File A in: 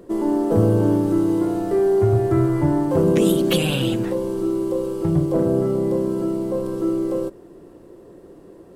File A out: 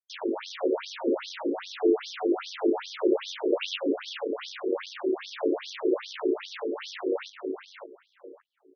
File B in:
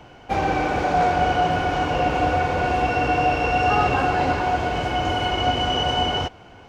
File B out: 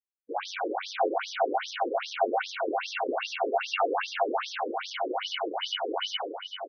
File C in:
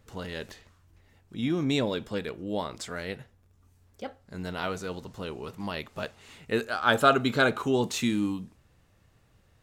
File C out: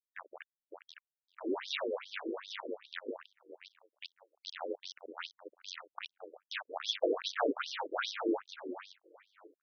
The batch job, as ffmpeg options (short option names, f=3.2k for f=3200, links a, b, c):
-filter_complex "[0:a]lowpass=8.4k,aeval=exprs='val(0)*sin(2*PI*47*n/s)':c=same,acrusher=bits=4:mix=0:aa=0.000001,asplit=2[a][b];[b]adelay=560,lowpass=f=2.3k:p=1,volume=-4.5dB,asplit=2[c][d];[d]adelay=560,lowpass=f=2.3k:p=1,volume=0.23,asplit=2[e][f];[f]adelay=560,lowpass=f=2.3k:p=1,volume=0.23[g];[c][e][g]amix=inputs=3:normalize=0[h];[a][h]amix=inputs=2:normalize=0,afftfilt=real='re*between(b*sr/1024,360*pow(4600/360,0.5+0.5*sin(2*PI*2.5*pts/sr))/1.41,360*pow(4600/360,0.5+0.5*sin(2*PI*2.5*pts/sr))*1.41)':imag='im*between(b*sr/1024,360*pow(4600/360,0.5+0.5*sin(2*PI*2.5*pts/sr))/1.41,360*pow(4600/360,0.5+0.5*sin(2*PI*2.5*pts/sr))*1.41)':win_size=1024:overlap=0.75"